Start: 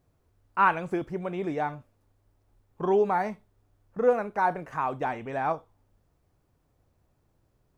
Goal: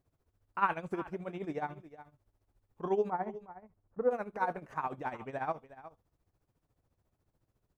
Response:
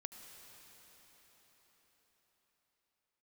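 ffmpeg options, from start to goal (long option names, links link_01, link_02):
-filter_complex "[0:a]asettb=1/sr,asplit=3[link_01][link_02][link_03];[link_01]atrim=end=3.104[link_04];[link_02]atrim=start=3.1:end=4.11,asetpts=PTS-STARTPTS,afade=type=in:duration=0.004:curve=qsin,afade=type=out:start_time=1.006:duration=0.004:curve=qsin,lowpass=1300[link_05];[link_03]atrim=start=4.106[link_06];[link_04][link_05]acrossfade=duration=0.004:curve1=hsin:curve2=qsin[link_07];[link_07][link_06]acrossfade=duration=0.004:curve1=qsin:curve2=hsin,tremolo=f=14:d=0.76,aecho=1:1:363:0.168,volume=-4.5dB"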